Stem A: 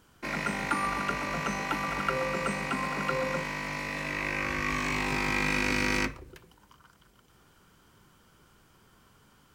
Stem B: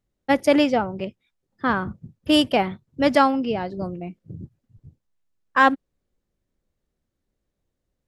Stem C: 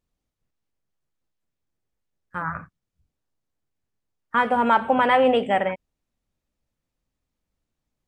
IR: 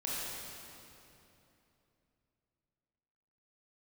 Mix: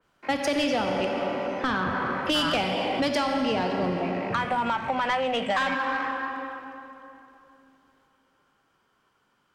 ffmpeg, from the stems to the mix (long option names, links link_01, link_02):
-filter_complex "[0:a]alimiter=limit=-22.5dB:level=0:latency=1,acrossover=split=3300[link_01][link_02];[link_02]acompressor=threshold=-56dB:ratio=4:attack=1:release=60[link_03];[link_01][link_03]amix=inputs=2:normalize=0,volume=-19dB,asplit=2[link_04][link_05];[link_05]volume=-8dB[link_06];[1:a]highshelf=frequency=9500:gain=-9,acrossover=split=120[link_07][link_08];[link_08]acompressor=threshold=-18dB:ratio=6[link_09];[link_07][link_09]amix=inputs=2:normalize=0,volume=-3dB,asplit=2[link_10][link_11];[link_11]volume=-6.5dB[link_12];[2:a]equalizer=frequency=390:width_type=o:width=0.44:gain=-14.5,acompressor=threshold=-26dB:ratio=6,volume=1dB[link_13];[3:a]atrim=start_sample=2205[link_14];[link_06][link_12]amix=inputs=2:normalize=0[link_15];[link_15][link_14]afir=irnorm=-1:irlink=0[link_16];[link_04][link_10][link_13][link_16]amix=inputs=4:normalize=0,acrossover=split=190|3000[link_17][link_18][link_19];[link_18]acompressor=threshold=-31dB:ratio=6[link_20];[link_17][link_20][link_19]amix=inputs=3:normalize=0,asplit=2[link_21][link_22];[link_22]highpass=frequency=720:poles=1,volume=19dB,asoftclip=type=tanh:threshold=-13.5dB[link_23];[link_21][link_23]amix=inputs=2:normalize=0,lowpass=frequency=2100:poles=1,volume=-6dB,adynamicequalizer=threshold=0.00891:dfrequency=3200:dqfactor=0.7:tfrequency=3200:tqfactor=0.7:attack=5:release=100:ratio=0.375:range=2.5:mode=boostabove:tftype=highshelf"